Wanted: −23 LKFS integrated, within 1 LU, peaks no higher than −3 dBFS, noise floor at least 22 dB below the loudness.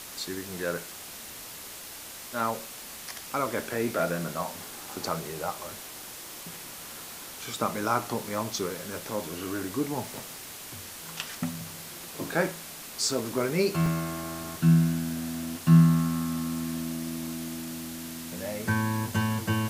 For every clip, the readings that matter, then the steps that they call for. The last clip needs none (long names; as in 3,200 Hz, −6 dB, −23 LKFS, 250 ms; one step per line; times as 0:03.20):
number of dropouts 1; longest dropout 2.7 ms; background noise floor −43 dBFS; target noise floor −52 dBFS; integrated loudness −30.0 LKFS; sample peak −8.5 dBFS; target loudness −23.0 LKFS
→ repair the gap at 0:13.86, 2.7 ms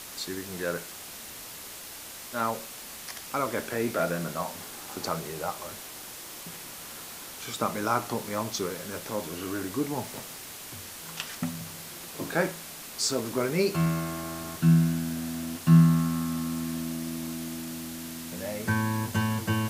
number of dropouts 0; background noise floor −43 dBFS; target noise floor −52 dBFS
→ noise reduction from a noise print 9 dB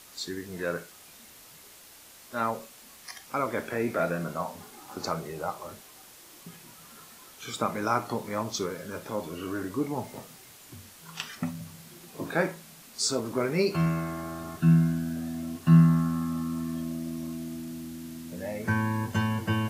background noise floor −51 dBFS; target noise floor −52 dBFS
→ noise reduction from a noise print 6 dB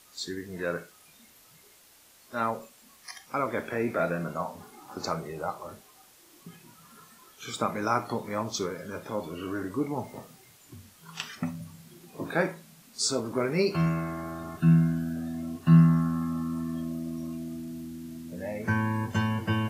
background noise floor −57 dBFS; integrated loudness −29.5 LKFS; sample peak −8.5 dBFS; target loudness −23.0 LKFS
→ level +6.5 dB
brickwall limiter −3 dBFS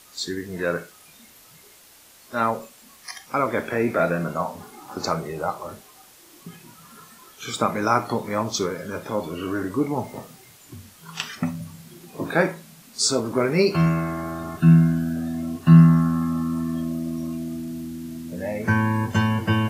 integrated loudness −23.0 LKFS; sample peak −3.0 dBFS; background noise floor −51 dBFS